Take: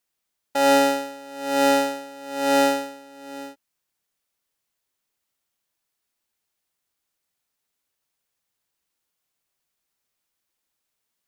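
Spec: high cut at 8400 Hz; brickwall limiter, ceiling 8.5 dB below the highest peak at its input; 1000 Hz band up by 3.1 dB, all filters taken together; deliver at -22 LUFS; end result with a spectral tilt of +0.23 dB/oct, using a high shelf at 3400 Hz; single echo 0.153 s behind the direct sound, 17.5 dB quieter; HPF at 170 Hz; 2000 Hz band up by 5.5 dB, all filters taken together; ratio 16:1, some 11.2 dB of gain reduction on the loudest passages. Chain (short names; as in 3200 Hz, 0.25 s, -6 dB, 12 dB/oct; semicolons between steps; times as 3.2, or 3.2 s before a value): HPF 170 Hz; LPF 8400 Hz; bell 1000 Hz +3 dB; bell 2000 Hz +7 dB; high shelf 3400 Hz -4.5 dB; compressor 16:1, threshold -23 dBFS; limiter -20.5 dBFS; echo 0.153 s -17.5 dB; gain +9 dB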